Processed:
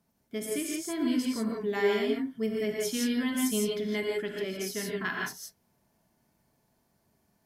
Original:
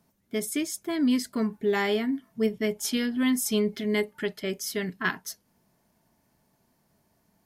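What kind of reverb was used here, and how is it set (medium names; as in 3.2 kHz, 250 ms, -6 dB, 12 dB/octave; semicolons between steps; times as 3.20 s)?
gated-style reverb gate 190 ms rising, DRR -1.5 dB; trim -6.5 dB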